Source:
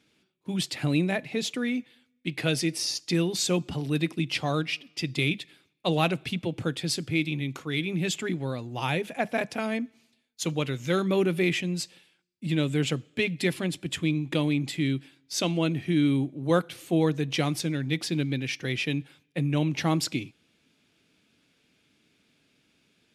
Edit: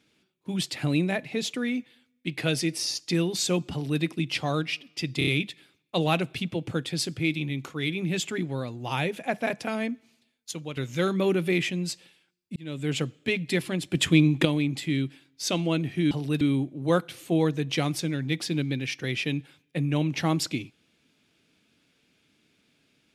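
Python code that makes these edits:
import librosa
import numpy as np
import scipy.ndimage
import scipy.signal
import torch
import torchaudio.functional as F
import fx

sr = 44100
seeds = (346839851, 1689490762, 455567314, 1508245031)

y = fx.edit(x, sr, fx.duplicate(start_s=3.72, length_s=0.3, to_s=16.02),
    fx.stutter(start_s=5.18, slice_s=0.03, count=4),
    fx.clip_gain(start_s=10.42, length_s=0.26, db=-8.0),
    fx.fade_in_span(start_s=12.47, length_s=0.43),
    fx.clip_gain(start_s=13.83, length_s=0.53, db=7.5), tone=tone)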